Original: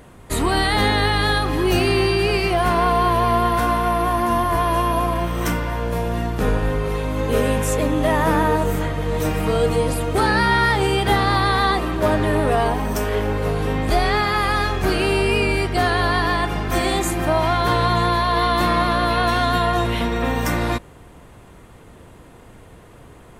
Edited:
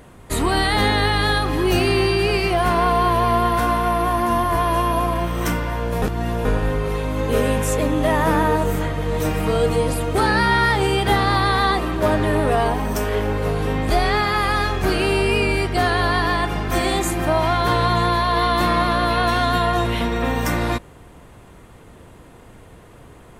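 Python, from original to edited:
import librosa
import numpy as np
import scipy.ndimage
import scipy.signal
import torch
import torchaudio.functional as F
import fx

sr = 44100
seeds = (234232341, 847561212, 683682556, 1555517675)

y = fx.edit(x, sr, fx.reverse_span(start_s=6.02, length_s=0.43), tone=tone)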